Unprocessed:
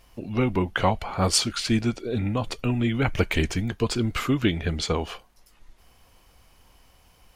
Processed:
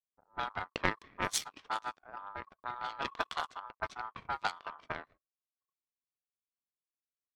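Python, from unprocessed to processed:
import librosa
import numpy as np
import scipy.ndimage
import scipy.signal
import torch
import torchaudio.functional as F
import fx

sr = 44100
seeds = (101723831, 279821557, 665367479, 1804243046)

y = fx.power_curve(x, sr, exponent=2.0)
y = y * np.sin(2.0 * np.pi * 1100.0 * np.arange(len(y)) / sr)
y = fx.env_lowpass(y, sr, base_hz=460.0, full_db=-31.0)
y = F.gain(torch.from_numpy(y), -1.0).numpy()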